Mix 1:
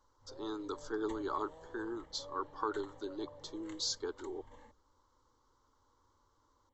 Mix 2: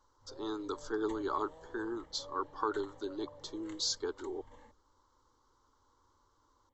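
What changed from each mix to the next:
speech +5.5 dB; reverb: off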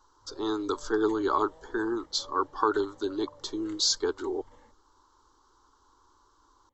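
speech +8.5 dB

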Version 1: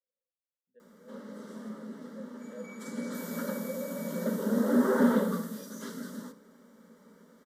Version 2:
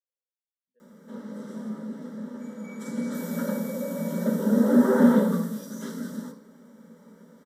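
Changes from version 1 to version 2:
speech -9.5 dB; background: send +9.5 dB

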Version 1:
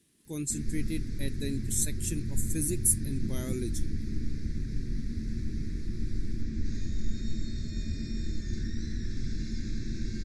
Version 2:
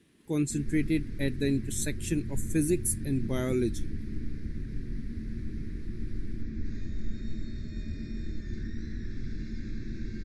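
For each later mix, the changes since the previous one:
speech +9.0 dB; master: add tone controls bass -3 dB, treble -15 dB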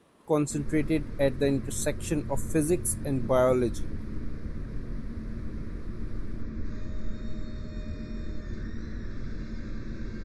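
master: add band shelf 800 Hz +15.5 dB

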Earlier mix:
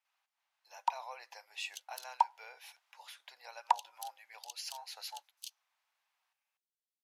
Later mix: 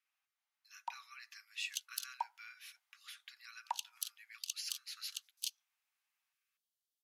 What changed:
speech: add brick-wall FIR high-pass 1100 Hz; first sound -11.5 dB; second sound +7.0 dB

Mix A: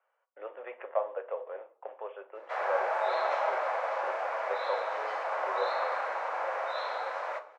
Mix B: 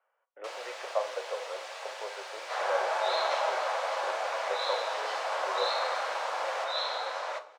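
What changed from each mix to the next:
first sound: unmuted; second sound: add band shelf 6100 Hz +12 dB 2.3 oct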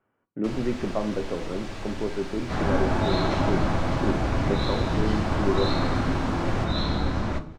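master: remove Chebyshev high-pass 510 Hz, order 5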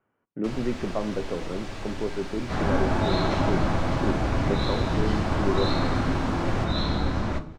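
speech: send -7.0 dB

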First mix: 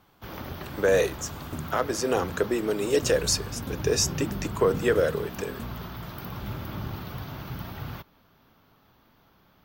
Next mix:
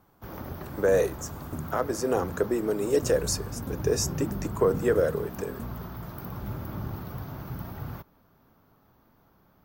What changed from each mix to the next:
master: add bell 3200 Hz -11.5 dB 1.6 oct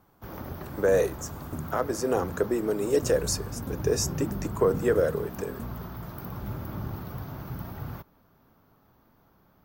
none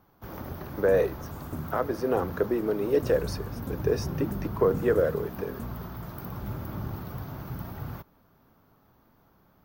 speech: add running mean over 6 samples

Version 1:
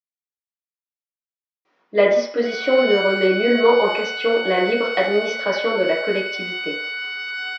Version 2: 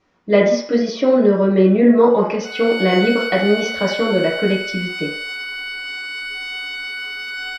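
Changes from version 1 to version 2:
speech: entry -1.65 s; master: remove BPF 390–4600 Hz

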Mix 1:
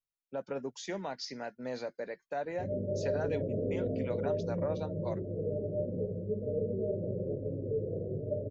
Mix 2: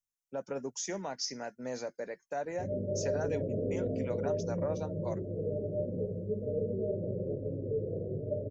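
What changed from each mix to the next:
master: add resonant high shelf 4900 Hz +6 dB, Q 3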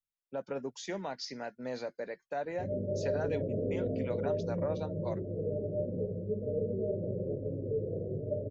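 master: add resonant high shelf 4900 Hz -6 dB, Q 3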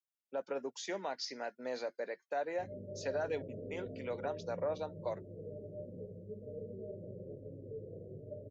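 speech: add HPF 330 Hz 12 dB/oct; background -12.0 dB

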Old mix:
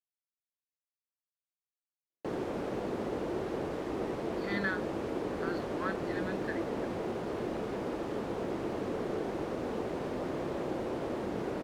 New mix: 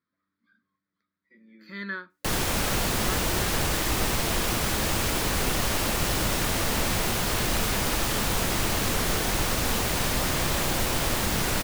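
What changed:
speech: entry -2.75 s; background: remove band-pass 390 Hz, Q 1.6

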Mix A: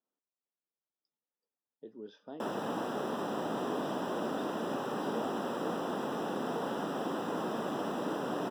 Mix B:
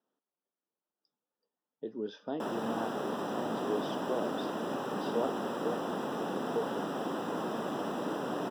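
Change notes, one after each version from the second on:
speech +9.0 dB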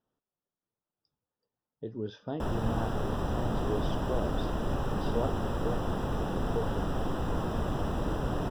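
master: remove HPF 210 Hz 24 dB/oct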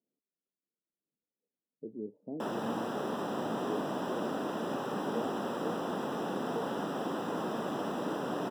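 speech: add Gaussian blur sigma 17 samples; master: add HPF 200 Hz 24 dB/oct

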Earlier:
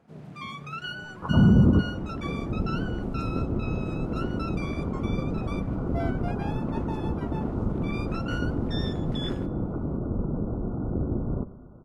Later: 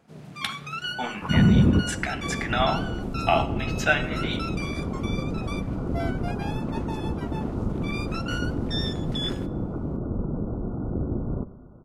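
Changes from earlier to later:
speech: unmuted; first sound: add high shelf 2600 Hz +10.5 dB

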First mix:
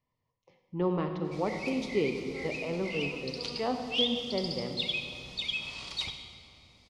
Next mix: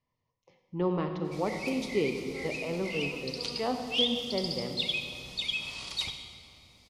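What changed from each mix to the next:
master: remove air absorption 55 m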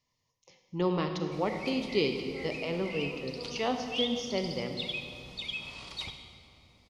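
speech: remove Bessel low-pass 1200 Hz, order 2; master: add high shelf 3600 Hz -11.5 dB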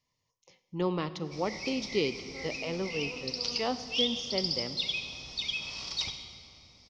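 speech: send -9.0 dB; background: add synth low-pass 5500 Hz, resonance Q 8.1

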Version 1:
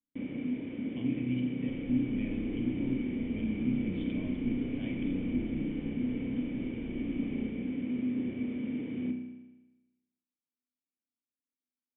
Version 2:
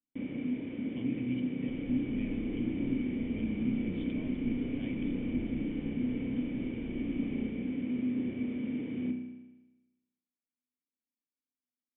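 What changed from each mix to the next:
speech: send -11.0 dB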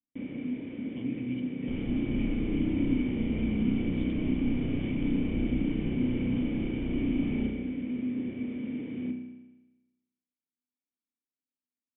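second sound +10.0 dB

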